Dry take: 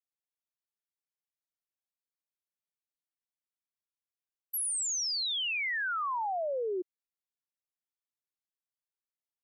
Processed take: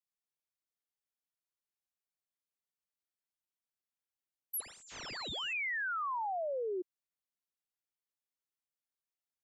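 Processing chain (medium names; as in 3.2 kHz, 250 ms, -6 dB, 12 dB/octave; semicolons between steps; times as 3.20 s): 4.60–5.53 s: class-D stage that switches slowly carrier 7.3 kHz; trim -3.5 dB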